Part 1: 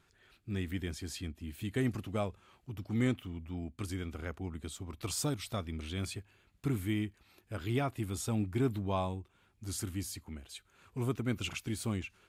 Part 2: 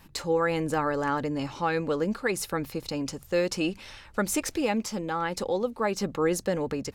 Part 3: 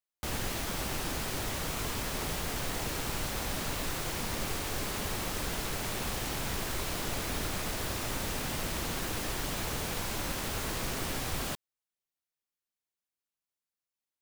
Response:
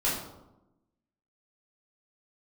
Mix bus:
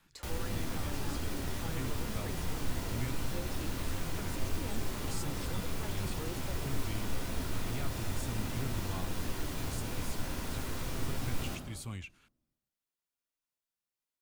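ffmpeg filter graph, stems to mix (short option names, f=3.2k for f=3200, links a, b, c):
-filter_complex "[0:a]equalizer=f=320:t=o:w=2.3:g=-12.5,volume=0dB[a];[1:a]volume=-16dB[b];[2:a]volume=-7dB,asplit=2[c][d];[d]volume=-6dB[e];[3:a]atrim=start_sample=2205[f];[e][f]afir=irnorm=-1:irlink=0[g];[a][b][c][g]amix=inputs=4:normalize=0,acrossover=split=310[h][i];[i]acompressor=threshold=-45dB:ratio=2[j];[h][j]amix=inputs=2:normalize=0"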